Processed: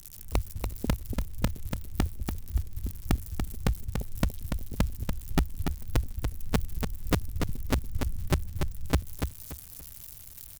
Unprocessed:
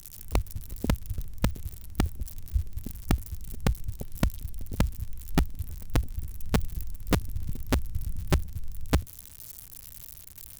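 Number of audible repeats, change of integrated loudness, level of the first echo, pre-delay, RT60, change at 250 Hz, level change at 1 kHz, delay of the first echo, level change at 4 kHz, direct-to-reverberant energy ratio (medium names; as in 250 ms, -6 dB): 3, -0.5 dB, -6.0 dB, no reverb, no reverb, -0.5 dB, -0.5 dB, 288 ms, -0.5 dB, no reverb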